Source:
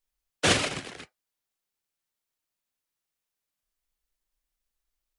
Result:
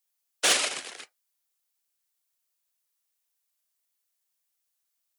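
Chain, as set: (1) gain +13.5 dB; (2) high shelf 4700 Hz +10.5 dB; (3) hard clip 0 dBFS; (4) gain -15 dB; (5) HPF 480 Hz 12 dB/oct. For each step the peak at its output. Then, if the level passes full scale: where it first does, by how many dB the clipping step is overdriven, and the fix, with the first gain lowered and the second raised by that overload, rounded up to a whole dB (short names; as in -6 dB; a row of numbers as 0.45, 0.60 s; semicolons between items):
+5.0, +7.0, 0.0, -15.0, -10.5 dBFS; step 1, 7.0 dB; step 1 +6.5 dB, step 4 -8 dB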